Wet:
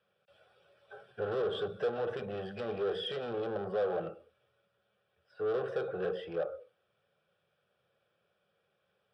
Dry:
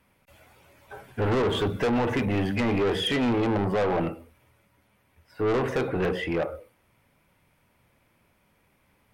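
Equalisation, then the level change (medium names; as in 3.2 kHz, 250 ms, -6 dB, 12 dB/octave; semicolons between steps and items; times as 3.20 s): static phaser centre 1.4 kHz, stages 8; dynamic bell 2.8 kHz, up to -5 dB, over -47 dBFS, Q 0.91; cabinet simulation 250–6600 Hz, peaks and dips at 270 Hz -7 dB, 670 Hz -6 dB, 1.2 kHz -6 dB, 1.7 kHz -4 dB, 2.7 kHz -7 dB, 4.3 kHz -9 dB; -2.0 dB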